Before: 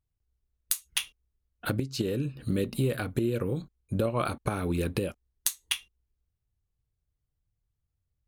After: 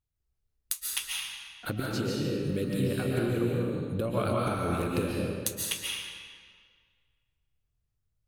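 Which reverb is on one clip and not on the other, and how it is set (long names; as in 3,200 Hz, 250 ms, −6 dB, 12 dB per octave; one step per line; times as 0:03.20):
comb and all-pass reverb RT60 1.8 s, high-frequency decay 0.85×, pre-delay 100 ms, DRR −3.5 dB
level −4 dB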